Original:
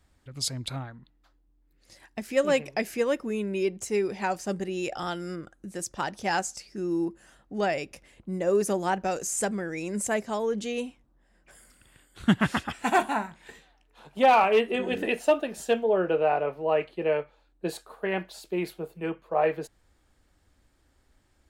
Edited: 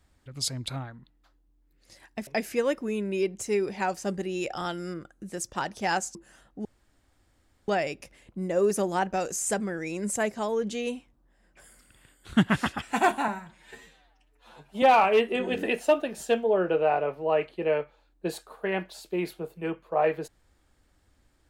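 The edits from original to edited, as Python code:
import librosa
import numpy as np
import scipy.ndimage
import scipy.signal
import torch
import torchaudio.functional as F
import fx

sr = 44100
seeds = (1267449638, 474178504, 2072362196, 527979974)

y = fx.edit(x, sr, fx.cut(start_s=2.27, length_s=0.42),
    fx.cut(start_s=6.57, length_s=0.52),
    fx.insert_room_tone(at_s=7.59, length_s=1.03),
    fx.stretch_span(start_s=13.19, length_s=1.03, factor=1.5), tone=tone)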